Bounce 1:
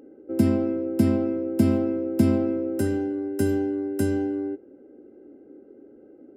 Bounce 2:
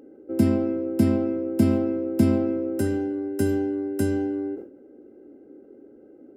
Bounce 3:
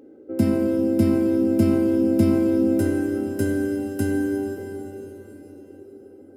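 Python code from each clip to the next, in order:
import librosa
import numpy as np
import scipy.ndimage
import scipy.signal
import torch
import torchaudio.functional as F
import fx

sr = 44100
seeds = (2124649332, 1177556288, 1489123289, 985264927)

y1 = fx.sustainer(x, sr, db_per_s=110.0)
y2 = fx.rev_plate(y1, sr, seeds[0], rt60_s=4.4, hf_ratio=0.95, predelay_ms=0, drr_db=2.5)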